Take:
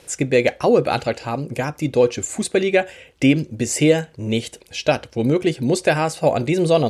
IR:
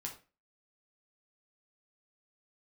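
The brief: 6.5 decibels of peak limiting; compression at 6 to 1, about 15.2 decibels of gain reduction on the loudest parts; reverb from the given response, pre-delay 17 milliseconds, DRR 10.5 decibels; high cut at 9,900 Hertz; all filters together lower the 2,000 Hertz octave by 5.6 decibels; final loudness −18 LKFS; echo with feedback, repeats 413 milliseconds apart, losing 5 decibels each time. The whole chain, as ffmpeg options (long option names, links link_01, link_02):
-filter_complex "[0:a]lowpass=9900,equalizer=frequency=2000:width_type=o:gain=-7.5,acompressor=threshold=-28dB:ratio=6,alimiter=limit=-23dB:level=0:latency=1,aecho=1:1:413|826|1239|1652|2065|2478|2891:0.562|0.315|0.176|0.0988|0.0553|0.031|0.0173,asplit=2[link_01][link_02];[1:a]atrim=start_sample=2205,adelay=17[link_03];[link_02][link_03]afir=irnorm=-1:irlink=0,volume=-9dB[link_04];[link_01][link_04]amix=inputs=2:normalize=0,volume=14dB"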